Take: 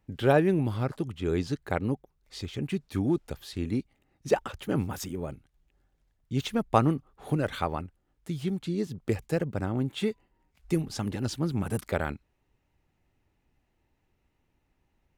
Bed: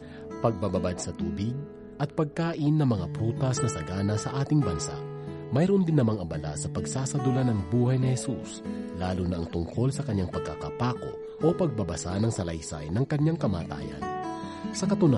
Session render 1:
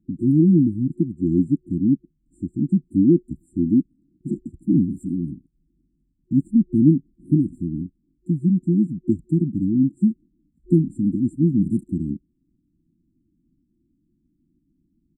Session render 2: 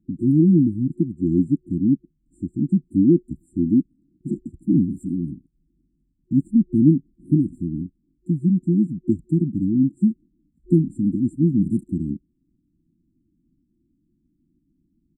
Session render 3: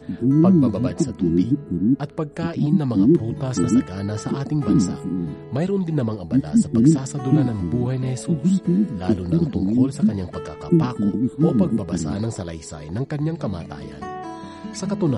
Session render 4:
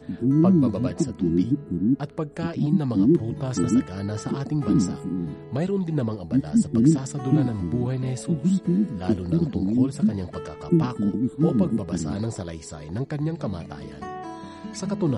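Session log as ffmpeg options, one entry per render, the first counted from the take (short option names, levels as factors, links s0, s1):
-af "afftfilt=real='re*(1-between(b*sr/4096,360,7200))':imag='im*(1-between(b*sr/4096,360,7200))':win_size=4096:overlap=0.75,firequalizer=gain_entry='entry(110,0);entry(170,13);entry(280,14);entry(910,-26);entry(1700,4);entry(3000,-8);entry(5600,-7);entry(9000,-9);entry(13000,-28)':delay=0.05:min_phase=1"
-af anull
-filter_complex "[1:a]volume=1.12[s0];[0:a][s0]amix=inputs=2:normalize=0"
-af "volume=0.708"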